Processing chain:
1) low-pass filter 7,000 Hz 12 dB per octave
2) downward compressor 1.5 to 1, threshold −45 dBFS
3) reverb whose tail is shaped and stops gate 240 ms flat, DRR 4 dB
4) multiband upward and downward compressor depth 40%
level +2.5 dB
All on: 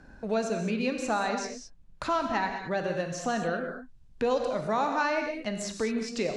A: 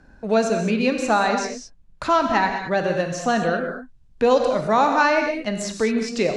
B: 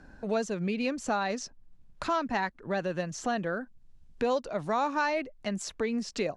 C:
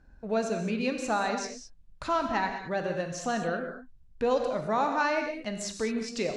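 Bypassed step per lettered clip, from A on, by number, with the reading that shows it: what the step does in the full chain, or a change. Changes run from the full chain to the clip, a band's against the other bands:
2, average gain reduction 7.0 dB
3, change in integrated loudness −1.5 LU
4, change in momentary loudness spread +1 LU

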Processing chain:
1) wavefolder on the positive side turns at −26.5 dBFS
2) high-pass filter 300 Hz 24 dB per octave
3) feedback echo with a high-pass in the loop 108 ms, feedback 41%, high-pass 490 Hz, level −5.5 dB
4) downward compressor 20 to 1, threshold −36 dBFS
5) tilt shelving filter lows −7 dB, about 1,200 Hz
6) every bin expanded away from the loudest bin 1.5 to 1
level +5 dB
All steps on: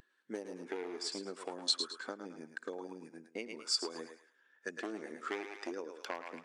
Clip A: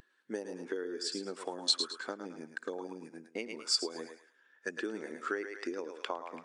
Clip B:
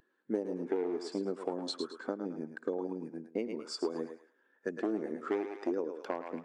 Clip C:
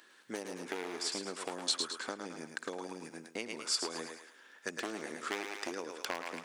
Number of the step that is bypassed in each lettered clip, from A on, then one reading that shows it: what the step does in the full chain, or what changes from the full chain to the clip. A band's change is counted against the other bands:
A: 1, distortion level −15 dB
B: 5, 8 kHz band −15.0 dB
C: 6, 4 kHz band −4.0 dB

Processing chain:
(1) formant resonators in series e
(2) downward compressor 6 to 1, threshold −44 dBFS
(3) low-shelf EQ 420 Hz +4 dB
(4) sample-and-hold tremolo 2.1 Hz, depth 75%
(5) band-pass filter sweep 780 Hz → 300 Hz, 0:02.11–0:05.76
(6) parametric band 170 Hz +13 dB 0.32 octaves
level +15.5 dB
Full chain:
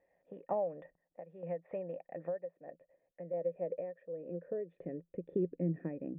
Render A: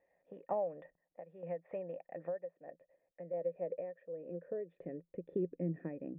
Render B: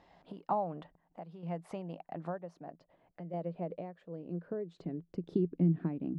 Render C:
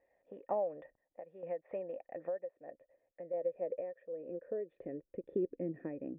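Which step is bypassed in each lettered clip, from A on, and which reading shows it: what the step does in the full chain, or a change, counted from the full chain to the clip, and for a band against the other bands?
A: 3, 125 Hz band −2.0 dB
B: 1, 500 Hz band −9.0 dB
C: 6, 125 Hz band −10.0 dB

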